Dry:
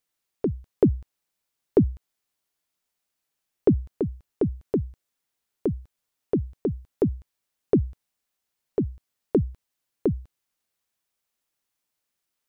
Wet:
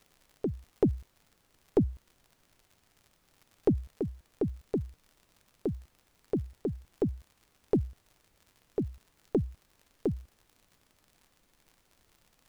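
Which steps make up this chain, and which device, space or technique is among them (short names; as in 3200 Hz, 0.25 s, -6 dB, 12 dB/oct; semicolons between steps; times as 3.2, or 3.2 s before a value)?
record under a worn stylus (tracing distortion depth 0.095 ms; crackle 81/s -40 dBFS; pink noise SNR 34 dB); gain -6.5 dB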